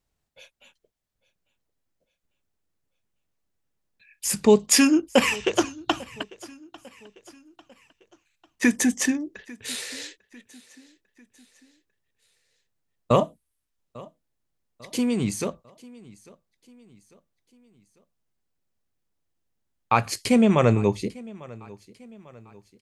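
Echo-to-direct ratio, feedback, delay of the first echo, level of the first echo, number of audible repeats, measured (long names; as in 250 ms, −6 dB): −21.0 dB, 47%, 847 ms, −22.0 dB, 2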